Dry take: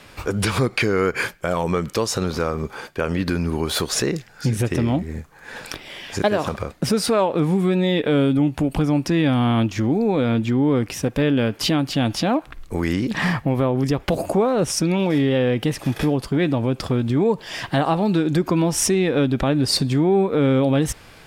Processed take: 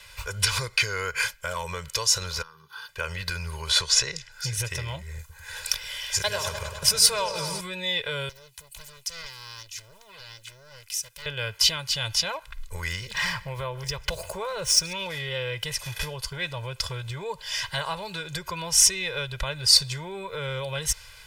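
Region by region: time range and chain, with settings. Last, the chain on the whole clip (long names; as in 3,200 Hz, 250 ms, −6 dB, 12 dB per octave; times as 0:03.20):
0:02.42–0:02.89: downward compressor 5 to 1, threshold −29 dBFS + high-pass filter 150 Hz 24 dB per octave + phaser with its sweep stopped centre 2,200 Hz, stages 6
0:03.69–0:04.32: low-pass filter 7,100 Hz + multiband upward and downward compressor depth 40%
0:05.19–0:07.61: high-shelf EQ 6,000 Hz +8 dB + echo whose low-pass opens from repeat to repeat 101 ms, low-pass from 750 Hz, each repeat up 1 octave, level −6 dB
0:08.29–0:11.26: first-order pre-emphasis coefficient 0.9 + highs frequency-modulated by the lows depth 0.95 ms
0:12.88–0:14.93: running median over 3 samples + single-tap delay 151 ms −21.5 dB
whole clip: guitar amp tone stack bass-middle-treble 10-0-10; comb filter 2 ms, depth 93%; dynamic equaliser 5,700 Hz, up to +5 dB, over −41 dBFS, Q 1.9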